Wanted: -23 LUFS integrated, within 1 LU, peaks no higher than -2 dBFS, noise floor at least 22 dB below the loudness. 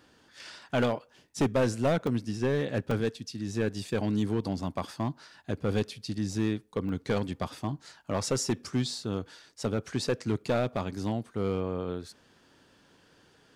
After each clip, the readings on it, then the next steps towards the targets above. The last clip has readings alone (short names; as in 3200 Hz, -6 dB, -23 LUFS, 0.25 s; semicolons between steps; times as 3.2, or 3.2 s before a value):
clipped 1.2%; flat tops at -20.5 dBFS; dropouts 4; longest dropout 3.2 ms; loudness -31.5 LUFS; peak -20.5 dBFS; loudness target -23.0 LUFS
-> clip repair -20.5 dBFS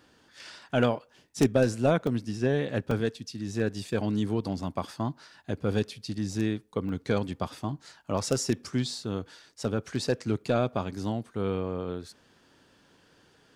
clipped 0.0%; dropouts 4; longest dropout 3.2 ms
-> interpolate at 2.07/2.91/6.89/9.78, 3.2 ms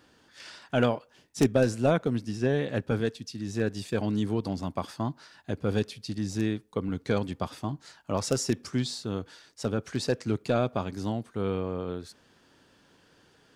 dropouts 0; loudness -30.0 LUFS; peak -11.5 dBFS; loudness target -23.0 LUFS
-> gain +7 dB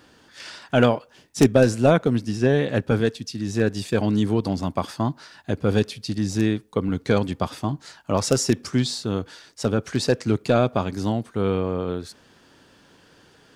loudness -23.0 LUFS; peak -4.5 dBFS; noise floor -55 dBFS